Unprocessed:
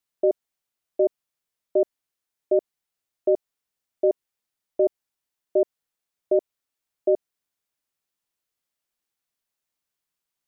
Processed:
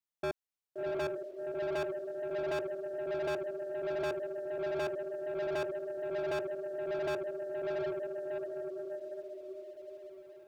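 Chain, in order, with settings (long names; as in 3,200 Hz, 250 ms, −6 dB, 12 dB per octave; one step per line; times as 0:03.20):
feedback delay with all-pass diffusion 709 ms, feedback 50%, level −5 dB
hard clipping −23.5 dBFS, distortion −4 dB
leveller curve on the samples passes 2
level −8 dB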